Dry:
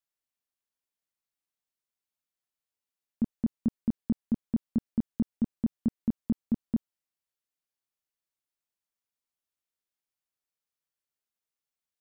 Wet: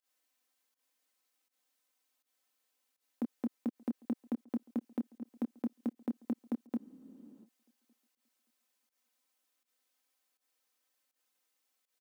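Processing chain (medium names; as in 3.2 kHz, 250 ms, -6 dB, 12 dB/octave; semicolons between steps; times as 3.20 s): block-companded coder 7-bit; high-pass 250 Hz 24 dB/octave; comb 3.9 ms, depth 95%; compressor with a negative ratio -27 dBFS, ratio -0.5; peak limiter -29 dBFS, peak gain reduction 7 dB; volume shaper 81 bpm, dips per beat 1, -21 dB, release 108 ms; tape echo 578 ms, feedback 29%, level -23 dB, low-pass 1.1 kHz; spectral freeze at 6.80 s, 0.64 s; trim +3 dB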